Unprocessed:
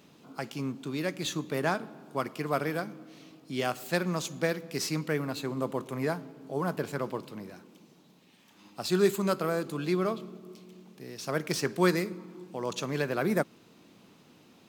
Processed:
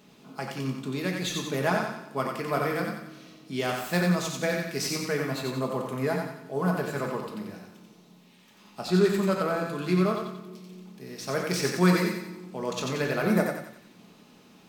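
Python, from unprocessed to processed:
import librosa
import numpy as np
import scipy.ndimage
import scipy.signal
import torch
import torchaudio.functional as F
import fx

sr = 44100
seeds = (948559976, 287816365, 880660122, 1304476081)

y = fx.high_shelf(x, sr, hz=5600.0, db=-9.5, at=(8.81, 9.73))
y = fx.echo_thinned(y, sr, ms=90, feedback_pct=49, hz=660.0, wet_db=-3)
y = fx.room_shoebox(y, sr, seeds[0], volume_m3=460.0, walls='furnished', distance_m=1.4)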